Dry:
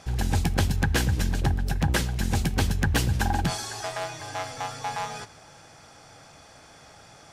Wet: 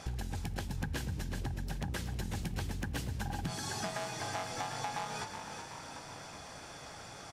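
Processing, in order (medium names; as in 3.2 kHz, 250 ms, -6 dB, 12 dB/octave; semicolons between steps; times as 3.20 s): compression 10:1, threshold -36 dBFS, peak gain reduction 17.5 dB; frequency-shifting echo 373 ms, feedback 58%, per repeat +47 Hz, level -8 dB; trim +1 dB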